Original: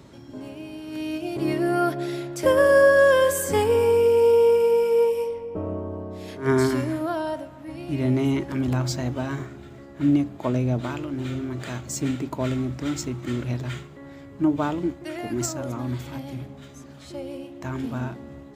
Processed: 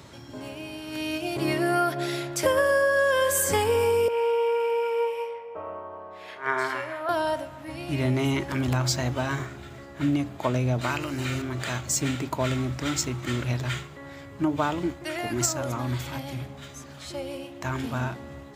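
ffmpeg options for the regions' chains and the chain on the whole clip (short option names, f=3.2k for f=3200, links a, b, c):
-filter_complex "[0:a]asettb=1/sr,asplit=3[a][b][c];[a]atrim=end=4.084[d];[b]atrim=start=4.08:end=7.09,asetpts=PTS-STARTPTS,afade=t=in:d=0.004:c=qsin,afade=t=out:st=3.006:d=0.004:c=qsin,acrossover=split=540 2900:gain=0.0891 1 0.141[e][f][g];[e][f][g]amix=inputs=3:normalize=0,asplit=2[h][i];[i]adelay=49,volume=-11.5dB[j];[h][j]amix=inputs=2:normalize=0,atrim=end_sample=132741[k];[c]atrim=start=7.086[l];[d][k]acrossfade=d=0.004:c1=hsin:c2=qsin[m];[m][l]acrossfade=d=0.004:c1=qsin:c2=hsin,asettb=1/sr,asplit=3[n][o][p];[n]atrim=end=10.814[q];[o]atrim=start=10.81:end=11.42,asetpts=PTS-STARTPTS,afade=t=in:d=0.004:c=qsin,afade=t=out:st=0.606:d=0.004:c=qsin,acrossover=split=3300[r][s];[s]acompressor=threshold=-54dB:ratio=4:attack=1:release=60[t];[r][t]amix=inputs=2:normalize=0,highshelf=f=2.7k:g=11.5,bandreject=f=3.4k:w=5.8[u];[p]atrim=start=11.416[v];[q][u]acrossfade=d=0.004:c1=hsin:c2=qsin[w];[w][v]acrossfade=d=0.004:c1=qsin:c2=hsin,highpass=67,equalizer=f=260:w=0.56:g=-9.5,acompressor=threshold=-26dB:ratio=5,volume=6.5dB"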